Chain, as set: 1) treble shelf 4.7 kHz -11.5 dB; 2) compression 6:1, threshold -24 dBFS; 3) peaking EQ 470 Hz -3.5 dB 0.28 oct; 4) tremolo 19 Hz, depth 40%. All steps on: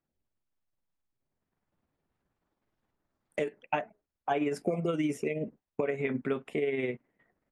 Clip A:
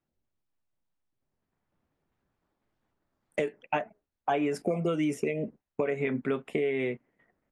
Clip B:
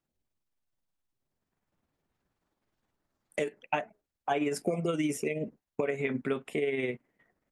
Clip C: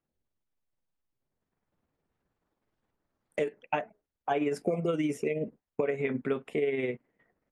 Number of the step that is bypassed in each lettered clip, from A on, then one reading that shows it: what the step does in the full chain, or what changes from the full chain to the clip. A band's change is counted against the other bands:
4, crest factor change -1.5 dB; 1, 8 kHz band +8.5 dB; 3, 500 Hz band +1.5 dB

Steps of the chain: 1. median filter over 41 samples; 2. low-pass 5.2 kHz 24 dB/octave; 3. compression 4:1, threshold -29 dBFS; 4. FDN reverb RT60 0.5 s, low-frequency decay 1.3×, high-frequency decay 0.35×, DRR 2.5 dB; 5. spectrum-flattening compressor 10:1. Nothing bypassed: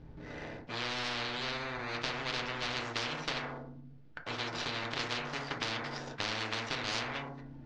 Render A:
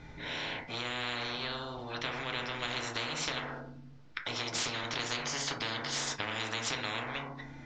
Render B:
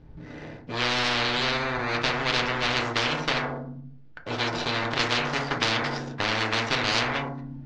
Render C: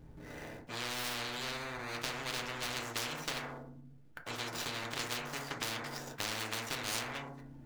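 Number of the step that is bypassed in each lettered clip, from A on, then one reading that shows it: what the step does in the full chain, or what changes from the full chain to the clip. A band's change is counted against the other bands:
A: 1, 8 kHz band +8.5 dB; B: 3, mean gain reduction 7.5 dB; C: 2, 8 kHz band +9.5 dB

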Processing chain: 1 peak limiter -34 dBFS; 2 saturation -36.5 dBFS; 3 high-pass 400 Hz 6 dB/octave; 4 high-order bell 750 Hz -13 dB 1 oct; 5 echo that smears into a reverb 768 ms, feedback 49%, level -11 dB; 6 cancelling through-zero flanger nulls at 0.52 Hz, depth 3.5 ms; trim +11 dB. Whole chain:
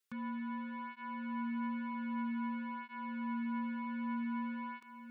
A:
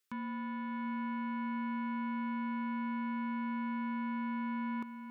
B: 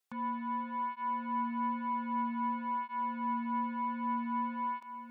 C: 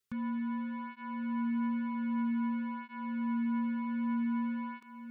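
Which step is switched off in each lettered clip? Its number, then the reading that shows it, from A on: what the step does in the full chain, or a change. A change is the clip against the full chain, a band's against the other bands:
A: 6, crest factor change -2.0 dB; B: 4, 1 kHz band +11.0 dB; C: 3, crest factor change -2.0 dB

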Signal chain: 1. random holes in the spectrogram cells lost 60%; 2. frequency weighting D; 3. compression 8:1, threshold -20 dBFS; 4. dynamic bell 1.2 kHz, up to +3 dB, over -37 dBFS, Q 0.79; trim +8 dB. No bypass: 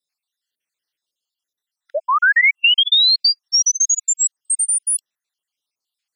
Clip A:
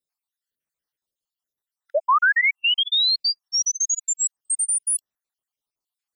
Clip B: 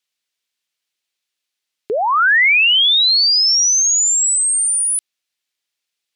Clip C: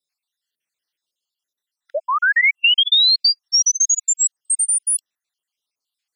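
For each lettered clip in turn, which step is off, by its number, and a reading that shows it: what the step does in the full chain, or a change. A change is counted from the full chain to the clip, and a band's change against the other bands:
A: 2, 500 Hz band +5.5 dB; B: 1, 2 kHz band -1.5 dB; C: 4, 1 kHz band -2.0 dB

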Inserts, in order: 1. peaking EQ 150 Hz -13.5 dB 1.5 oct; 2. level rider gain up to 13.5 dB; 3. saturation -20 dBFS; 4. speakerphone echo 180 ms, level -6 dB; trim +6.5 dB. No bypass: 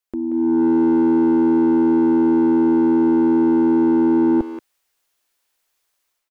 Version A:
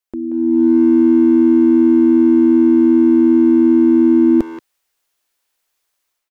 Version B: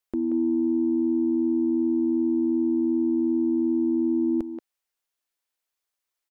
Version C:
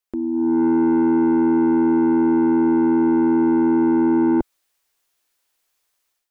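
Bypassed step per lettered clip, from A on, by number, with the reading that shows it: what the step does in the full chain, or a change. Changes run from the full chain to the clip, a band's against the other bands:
3, distortion -11 dB; 2, momentary loudness spread change -1 LU; 4, echo-to-direct -10.0 dB to none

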